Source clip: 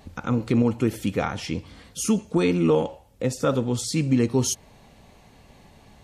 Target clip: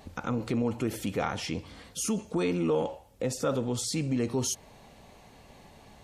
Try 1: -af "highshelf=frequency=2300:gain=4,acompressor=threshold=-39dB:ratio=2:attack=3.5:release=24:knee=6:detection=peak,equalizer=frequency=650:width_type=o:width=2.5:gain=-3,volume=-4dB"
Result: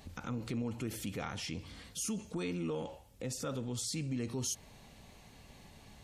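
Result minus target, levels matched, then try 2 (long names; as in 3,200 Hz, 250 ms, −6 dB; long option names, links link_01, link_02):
downward compressor: peak gain reduction +5 dB; 500 Hz band −3.5 dB
-af "highshelf=frequency=2300:gain=4,acompressor=threshold=-29dB:ratio=2:attack=3.5:release=24:knee=6:detection=peak,equalizer=frequency=650:width_type=o:width=2.5:gain=4.5,volume=-4dB"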